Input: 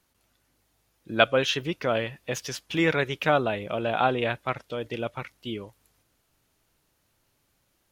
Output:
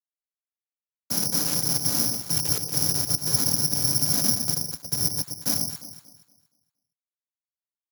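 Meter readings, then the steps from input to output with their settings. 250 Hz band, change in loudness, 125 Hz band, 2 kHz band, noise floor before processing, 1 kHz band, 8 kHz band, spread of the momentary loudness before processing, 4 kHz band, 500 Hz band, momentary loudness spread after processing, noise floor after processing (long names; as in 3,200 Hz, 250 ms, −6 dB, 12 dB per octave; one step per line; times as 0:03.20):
−2.0 dB, +5.0 dB, +2.5 dB, −14.5 dB, −72 dBFS, −12.5 dB, +20.5 dB, 12 LU, +6.0 dB, −15.0 dB, 7 LU, below −85 dBFS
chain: rippled gain that drifts along the octave scale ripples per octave 0.95, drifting +0.91 Hz, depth 15 dB
brick-wall band-stop 280–5,100 Hz
high-shelf EQ 3,800 Hz −2 dB
mains-hum notches 60/120/180/240/300 Hz
in parallel at −0.5 dB: brickwall limiter −31 dBFS, peak gain reduction 10.5 dB
on the sum: comparator with hysteresis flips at −32 dBFS
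cochlear-implant simulation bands 8
on a send: delay that swaps between a low-pass and a high-pass 117 ms, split 910 Hz, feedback 55%, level −6 dB
on the sum: bad sample-rate conversion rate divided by 8×, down filtered, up zero stuff
level +1.5 dB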